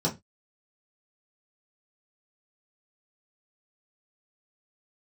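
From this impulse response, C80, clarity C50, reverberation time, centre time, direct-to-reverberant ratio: 24.5 dB, 15.5 dB, 0.20 s, 15 ms, -5.0 dB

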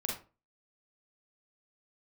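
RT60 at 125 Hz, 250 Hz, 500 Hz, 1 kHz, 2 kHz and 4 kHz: 0.40, 0.35, 0.35, 0.30, 0.25, 0.20 s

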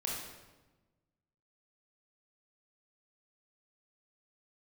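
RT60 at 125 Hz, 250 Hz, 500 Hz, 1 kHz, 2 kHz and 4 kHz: 1.7, 1.5, 1.2, 1.1, 0.95, 0.85 s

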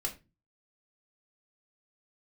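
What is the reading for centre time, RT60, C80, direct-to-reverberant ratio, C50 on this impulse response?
12 ms, 0.25 s, 20.0 dB, 0.5 dB, 13.5 dB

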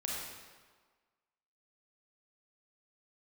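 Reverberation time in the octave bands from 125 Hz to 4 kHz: 1.2, 1.4, 1.5, 1.6, 1.3, 1.1 s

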